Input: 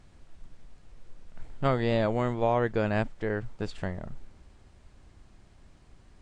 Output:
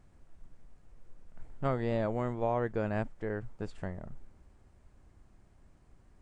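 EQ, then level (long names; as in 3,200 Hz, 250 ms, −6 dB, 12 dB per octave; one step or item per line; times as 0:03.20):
parametric band 3,800 Hz −8.5 dB 1.5 octaves
−5.0 dB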